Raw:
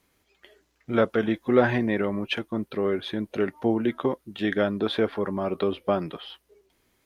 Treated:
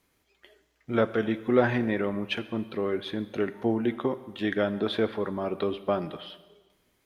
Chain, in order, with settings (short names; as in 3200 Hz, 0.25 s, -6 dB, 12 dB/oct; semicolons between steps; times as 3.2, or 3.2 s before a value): plate-style reverb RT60 1.3 s, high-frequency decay 0.95×, DRR 13 dB; gain -2.5 dB